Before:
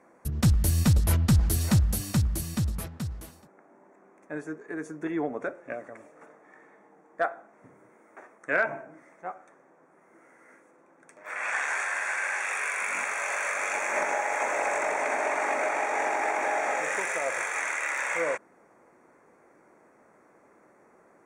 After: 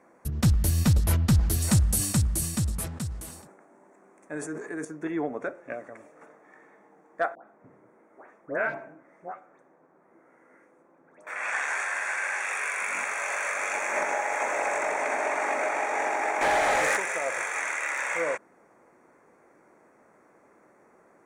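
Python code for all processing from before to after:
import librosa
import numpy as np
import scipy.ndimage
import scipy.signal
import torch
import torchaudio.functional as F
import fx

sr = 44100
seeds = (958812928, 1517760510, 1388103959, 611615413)

y = fx.chain(x, sr, fx.peak_eq(hz=8600.0, db=10.0, octaves=0.78),
    fx.sustainer(db_per_s=53.0), at=(1.62, 4.85))
y = fx.chain(y, sr, fx.high_shelf(hz=2100.0, db=-11.0),
    fx.dispersion(late='highs', ms=121.0, hz=1700.0),
    fx.echo_single(ms=78, db=-21.5), at=(7.35, 11.27))
y = fx.chain(y, sr, fx.peak_eq(hz=10000.0, db=5.5, octaves=0.26),
    fx.leveller(passes=2), at=(16.41, 16.97))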